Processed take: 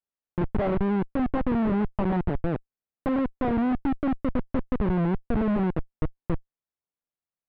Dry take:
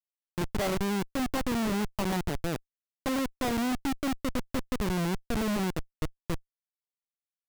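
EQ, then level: low-pass 1.4 kHz 6 dB/octave; distance through air 450 m; +6.0 dB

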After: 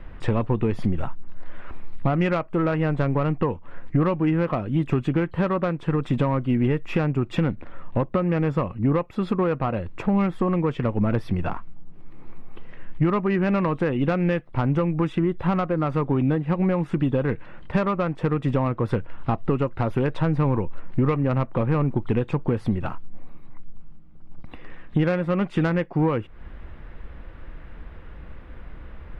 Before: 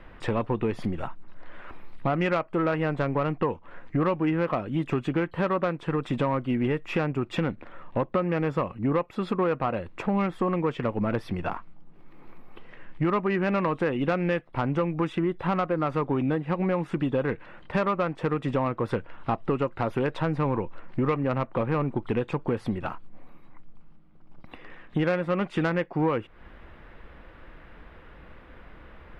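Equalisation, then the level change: bass shelf 190 Hz +11 dB; 0.0 dB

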